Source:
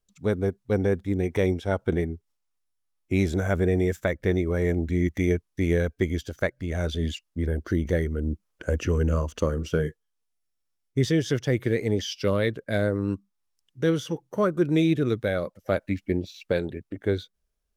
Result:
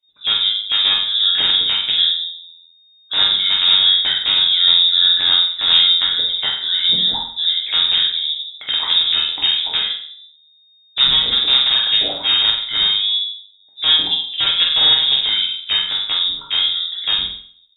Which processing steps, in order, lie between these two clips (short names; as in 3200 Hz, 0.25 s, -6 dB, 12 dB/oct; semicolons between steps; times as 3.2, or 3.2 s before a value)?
de-hum 258.7 Hz, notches 2; dynamic EQ 2700 Hz, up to +3 dB, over -47 dBFS, Q 2.3; in parallel at +2.5 dB: limiter -20.5 dBFS, peak gain reduction 10 dB; on the sum: sample leveller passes 1; wrapped overs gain 9 dB; on a send: flutter echo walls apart 8 m, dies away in 0.48 s; on the sum: shoebox room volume 41 m³, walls mixed, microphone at 0.78 m; inverted band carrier 3700 Hz; gain -8.5 dB